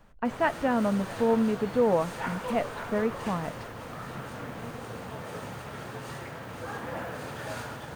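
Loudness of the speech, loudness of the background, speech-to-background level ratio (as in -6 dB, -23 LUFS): -28.0 LUFS, -38.0 LUFS, 10.0 dB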